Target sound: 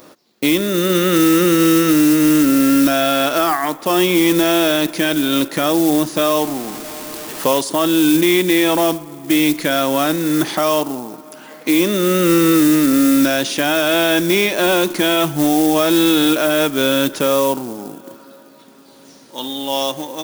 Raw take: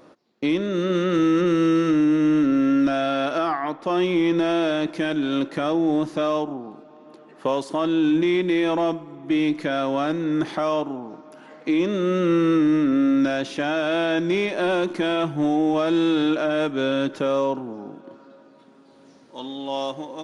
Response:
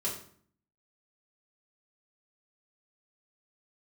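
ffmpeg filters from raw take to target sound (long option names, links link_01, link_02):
-filter_complex "[0:a]asettb=1/sr,asplit=3[link_01][link_02][link_03];[link_01]atrim=end=6.374[link_04];[link_02]atrim=start=6.37:end=7.61,asetpts=PTS-STARTPTS,afade=type=in:duration=0.004:curve=qsin,afade=type=out:start_time=1.236:duration=0.004:curve=qsin,aeval=exprs='val(0)+0.5*0.0178*sgn(val(0))':channel_layout=same[link_05];[link_03]atrim=start=7.606[link_06];[link_04][link_05]acrossfade=duration=0.004:curve1=hsin:curve2=qsin[link_07];[link_07][link_06]acrossfade=duration=0.004:curve1=qsin:curve2=hsin,acrusher=bits=6:mode=log:mix=0:aa=0.000001,crystalizer=i=3.5:c=0,volume=5.5dB"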